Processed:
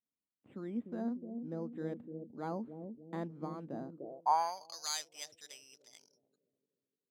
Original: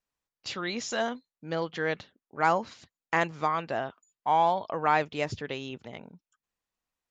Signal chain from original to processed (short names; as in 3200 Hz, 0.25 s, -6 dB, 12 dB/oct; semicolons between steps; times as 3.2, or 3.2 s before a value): careless resampling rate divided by 8×, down filtered, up hold; analogue delay 0.299 s, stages 1024, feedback 51%, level -5.5 dB; band-pass sweep 240 Hz -> 5700 Hz, 3.91–4.78